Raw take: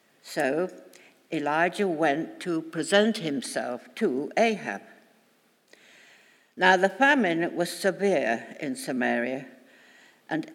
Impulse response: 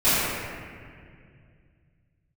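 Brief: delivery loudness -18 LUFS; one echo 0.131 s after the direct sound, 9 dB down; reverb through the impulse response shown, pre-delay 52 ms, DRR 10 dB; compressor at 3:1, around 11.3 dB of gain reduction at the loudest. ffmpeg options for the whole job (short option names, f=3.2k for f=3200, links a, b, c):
-filter_complex "[0:a]acompressor=threshold=-30dB:ratio=3,aecho=1:1:131:0.355,asplit=2[a][b];[1:a]atrim=start_sample=2205,adelay=52[c];[b][c]afir=irnorm=-1:irlink=0,volume=-30dB[d];[a][d]amix=inputs=2:normalize=0,volume=14.5dB"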